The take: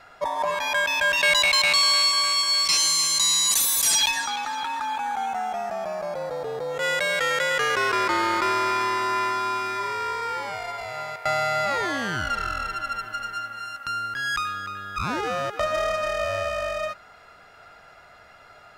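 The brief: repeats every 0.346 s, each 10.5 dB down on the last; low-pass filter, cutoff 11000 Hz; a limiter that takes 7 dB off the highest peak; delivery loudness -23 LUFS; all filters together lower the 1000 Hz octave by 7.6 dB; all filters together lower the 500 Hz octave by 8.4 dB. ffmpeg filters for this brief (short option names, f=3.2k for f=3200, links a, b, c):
-af "lowpass=11k,equalizer=f=500:t=o:g=-8,equalizer=f=1k:t=o:g=-8.5,alimiter=limit=-18dB:level=0:latency=1,aecho=1:1:346|692|1038:0.299|0.0896|0.0269,volume=3.5dB"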